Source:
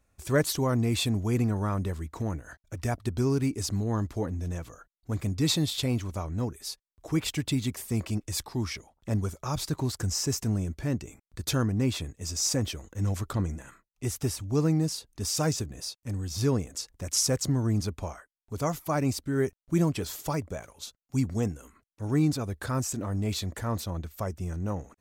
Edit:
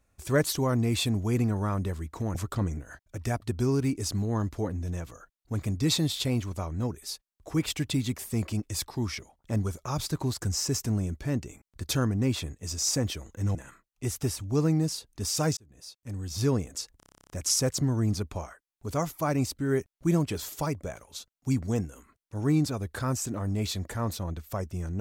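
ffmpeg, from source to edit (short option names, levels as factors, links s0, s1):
-filter_complex "[0:a]asplit=16[s0][s1][s2][s3][s4][s5][s6][s7][s8][s9][s10][s11][s12][s13][s14][s15];[s0]atrim=end=2.352[s16];[s1]atrim=start=13.128:end=13.552[s17];[s2]atrim=start=2.348:end=13.132[s18];[s3]atrim=start=13.548:end=15.57,asetpts=PTS-STARTPTS,afade=t=out:st=2.018:d=0.004:c=hsin[s19];[s4]atrim=start=15.57:end=17.002,asetpts=PTS-STARTPTS,afade=t=in:d=0.84[s20];[s5]atrim=start=16.968:end=17.002[s21];[s6]atrim=start=16.968:end=17.002[s22];[s7]atrim=start=16.968:end=17.002[s23];[s8]atrim=start=16.968:end=17.002[s24];[s9]atrim=start=16.968:end=17.002[s25];[s10]atrim=start=16.968:end=17.002[s26];[s11]atrim=start=16.968:end=17.002[s27];[s12]atrim=start=16.968:end=17.002[s28];[s13]atrim=start=16.968:end=17.002[s29];[s14]atrim=start=16.968:end=17.002[s30];[s15]atrim=start=16.968[s31];[s16][s17]acrossfade=d=0.004:c1=hsin:c2=hsin[s32];[s32][s18]acrossfade=d=0.004:c1=hsin:c2=hsin[s33];[s19][s20]concat=n=2:v=0:a=1[s34];[s33][s34]acrossfade=d=0.004:c1=hsin:c2=hsin[s35];[s35][s21]acrossfade=d=0.004:c1=hsin:c2=hsin[s36];[s36][s22]acrossfade=d=0.004:c1=hsin:c2=hsin[s37];[s37][s23]acrossfade=d=0.004:c1=hsin:c2=hsin[s38];[s38][s24]acrossfade=d=0.004:c1=hsin:c2=hsin[s39];[s39][s25]acrossfade=d=0.004:c1=hsin:c2=hsin[s40];[s40][s26]acrossfade=d=0.004:c1=hsin:c2=hsin[s41];[s41][s27]acrossfade=d=0.004:c1=hsin:c2=hsin[s42];[s42][s28]acrossfade=d=0.004:c1=hsin:c2=hsin[s43];[s43][s29]acrossfade=d=0.004:c1=hsin:c2=hsin[s44];[s44][s30]acrossfade=d=0.004:c1=hsin:c2=hsin[s45];[s45][s31]acrossfade=d=0.004:c1=hsin:c2=hsin"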